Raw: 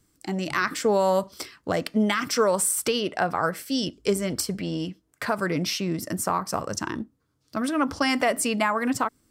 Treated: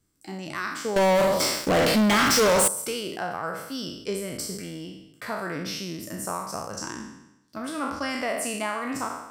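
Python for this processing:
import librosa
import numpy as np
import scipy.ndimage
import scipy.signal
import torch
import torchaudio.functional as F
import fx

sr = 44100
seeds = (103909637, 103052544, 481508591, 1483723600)

y = fx.spec_trails(x, sr, decay_s=0.88)
y = fx.leveller(y, sr, passes=5, at=(0.96, 2.68))
y = F.gain(torch.from_numpy(y), -8.5).numpy()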